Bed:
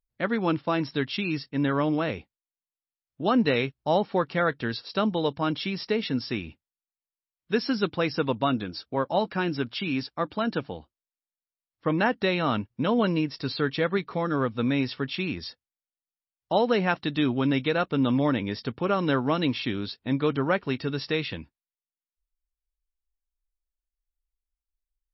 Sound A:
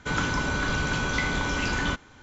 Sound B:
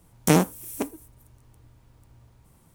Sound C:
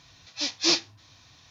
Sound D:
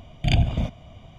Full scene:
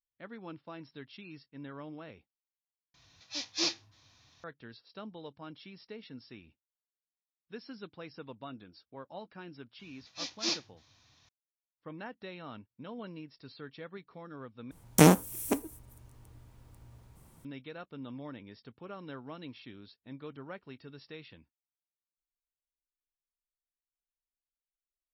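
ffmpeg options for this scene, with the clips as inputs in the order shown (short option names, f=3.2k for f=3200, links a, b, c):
-filter_complex "[3:a]asplit=2[a][b];[0:a]volume=-20dB,asplit=3[c][d][e];[c]atrim=end=2.944[f];[a]atrim=end=1.5,asetpts=PTS-STARTPTS,volume=-8.5dB[g];[d]atrim=start=4.436:end=14.714[h];[2:a]atrim=end=2.74,asetpts=PTS-STARTPTS,volume=-0.5dB[i];[e]atrim=start=17.446[j];[b]atrim=end=1.5,asetpts=PTS-STARTPTS,volume=-10dB,afade=t=in:d=0.004:c=hsin,afade=t=out:st=1.496:d=0.004:c=hsin,adelay=9790[k];[f][g]acrossfade=d=0.004:c1=hsin:c2=hsin[l];[l][h]acrossfade=d=0.004:c1=hsin:c2=hsin[m];[m][i]acrossfade=d=0.004:c1=hsin:c2=hsin[n];[n][j]acrossfade=d=0.004:c1=hsin:c2=hsin[o];[o][k]amix=inputs=2:normalize=0"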